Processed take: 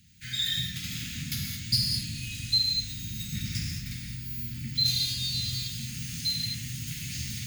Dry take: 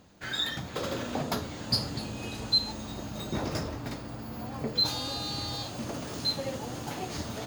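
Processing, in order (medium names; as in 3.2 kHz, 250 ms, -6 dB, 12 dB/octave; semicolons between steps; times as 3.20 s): Chebyshev band-stop 190–2100 Hz, order 3; treble shelf 7.7 kHz +7.5 dB; gated-style reverb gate 240 ms flat, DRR -1.5 dB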